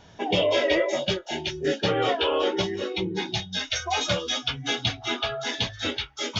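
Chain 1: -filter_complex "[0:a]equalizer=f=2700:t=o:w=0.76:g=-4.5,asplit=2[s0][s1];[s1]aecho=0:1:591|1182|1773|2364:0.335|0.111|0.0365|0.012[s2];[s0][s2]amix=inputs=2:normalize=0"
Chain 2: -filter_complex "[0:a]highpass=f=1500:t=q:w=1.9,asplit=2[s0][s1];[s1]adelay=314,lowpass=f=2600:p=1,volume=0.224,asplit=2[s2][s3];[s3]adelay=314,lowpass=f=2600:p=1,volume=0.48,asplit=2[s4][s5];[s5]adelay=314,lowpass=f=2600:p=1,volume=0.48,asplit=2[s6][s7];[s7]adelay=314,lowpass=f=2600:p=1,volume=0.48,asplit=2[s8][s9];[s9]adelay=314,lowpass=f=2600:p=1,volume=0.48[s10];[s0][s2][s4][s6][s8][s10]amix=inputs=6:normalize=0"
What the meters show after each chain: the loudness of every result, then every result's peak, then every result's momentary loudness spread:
-26.5 LUFS, -26.5 LUFS; -10.5 dBFS, -9.0 dBFS; 6 LU, 5 LU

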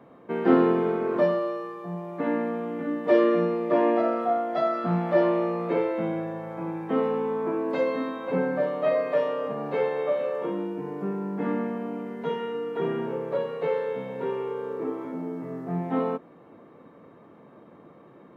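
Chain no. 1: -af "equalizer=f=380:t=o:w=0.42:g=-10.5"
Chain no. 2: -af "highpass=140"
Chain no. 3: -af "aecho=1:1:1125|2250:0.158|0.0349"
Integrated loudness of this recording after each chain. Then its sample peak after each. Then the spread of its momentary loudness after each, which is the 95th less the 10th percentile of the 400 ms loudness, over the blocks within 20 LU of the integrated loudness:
-29.5 LUFS, -27.0 LUFS, -27.0 LUFS; -10.5 dBFS, -8.0 dBFS, -8.0 dBFS; 11 LU, 11 LU, 11 LU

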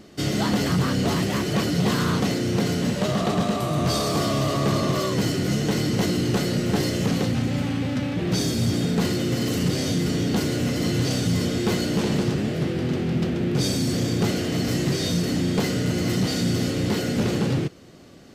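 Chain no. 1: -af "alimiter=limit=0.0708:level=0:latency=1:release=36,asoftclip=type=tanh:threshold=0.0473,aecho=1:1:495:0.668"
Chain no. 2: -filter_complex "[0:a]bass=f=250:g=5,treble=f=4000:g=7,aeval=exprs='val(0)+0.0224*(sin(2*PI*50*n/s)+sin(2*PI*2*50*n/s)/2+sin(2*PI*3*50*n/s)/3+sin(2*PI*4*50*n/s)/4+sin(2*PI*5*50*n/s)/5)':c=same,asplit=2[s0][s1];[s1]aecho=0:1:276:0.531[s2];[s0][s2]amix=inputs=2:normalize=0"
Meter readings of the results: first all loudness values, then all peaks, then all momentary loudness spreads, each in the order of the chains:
-31.0 LUFS, -19.0 LUFS; -23.0 dBFS, -7.0 dBFS; 1 LU, 2 LU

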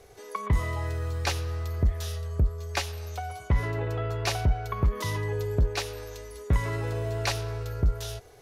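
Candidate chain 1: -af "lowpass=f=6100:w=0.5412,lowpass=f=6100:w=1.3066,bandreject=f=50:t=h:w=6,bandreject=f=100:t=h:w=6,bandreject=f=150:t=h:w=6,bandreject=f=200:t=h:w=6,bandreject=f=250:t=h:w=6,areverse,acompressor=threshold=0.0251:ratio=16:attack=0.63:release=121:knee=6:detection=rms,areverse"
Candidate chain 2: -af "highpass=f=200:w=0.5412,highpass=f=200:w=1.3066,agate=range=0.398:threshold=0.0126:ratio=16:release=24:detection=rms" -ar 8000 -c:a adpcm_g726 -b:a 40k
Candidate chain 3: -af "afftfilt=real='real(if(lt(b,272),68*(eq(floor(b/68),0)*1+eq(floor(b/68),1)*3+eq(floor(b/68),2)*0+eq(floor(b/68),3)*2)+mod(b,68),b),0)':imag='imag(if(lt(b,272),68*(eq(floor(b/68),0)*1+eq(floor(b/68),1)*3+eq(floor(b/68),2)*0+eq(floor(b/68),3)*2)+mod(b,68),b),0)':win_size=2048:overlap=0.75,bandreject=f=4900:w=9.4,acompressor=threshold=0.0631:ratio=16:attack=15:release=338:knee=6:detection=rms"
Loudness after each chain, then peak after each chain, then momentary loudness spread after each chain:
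-39.5 LUFS, -36.0 LUFS, -29.0 LUFS; -28.5 dBFS, -16.0 dBFS, -15.0 dBFS; 3 LU, 13 LU, 7 LU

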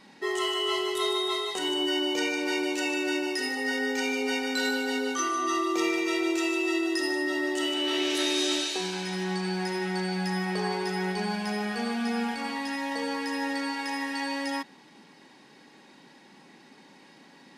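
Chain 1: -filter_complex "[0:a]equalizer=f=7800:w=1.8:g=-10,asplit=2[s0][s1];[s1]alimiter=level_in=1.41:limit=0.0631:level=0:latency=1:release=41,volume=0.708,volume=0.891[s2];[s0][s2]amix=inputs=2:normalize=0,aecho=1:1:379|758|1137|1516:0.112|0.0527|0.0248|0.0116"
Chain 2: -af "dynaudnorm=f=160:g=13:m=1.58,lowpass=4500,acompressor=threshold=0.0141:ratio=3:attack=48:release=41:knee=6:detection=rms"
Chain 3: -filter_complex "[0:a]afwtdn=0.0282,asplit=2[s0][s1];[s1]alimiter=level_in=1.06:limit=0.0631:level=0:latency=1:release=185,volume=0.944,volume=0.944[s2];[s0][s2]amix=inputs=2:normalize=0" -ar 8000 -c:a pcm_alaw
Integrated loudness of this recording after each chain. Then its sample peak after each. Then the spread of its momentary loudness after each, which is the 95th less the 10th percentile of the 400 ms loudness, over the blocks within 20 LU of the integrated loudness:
-25.5 LUFS, -32.5 LUFS, -25.5 LUFS; -13.5 dBFS, -20.0 dBFS, -13.5 dBFS; 4 LU, 18 LU, 4 LU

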